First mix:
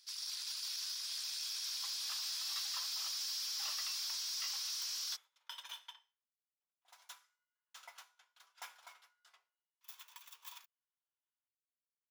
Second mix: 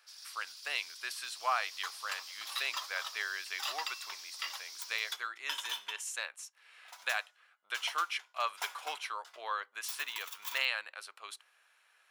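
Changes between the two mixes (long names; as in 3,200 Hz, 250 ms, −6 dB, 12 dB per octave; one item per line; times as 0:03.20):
speech: unmuted
first sound −8.0 dB
second sound +10.0 dB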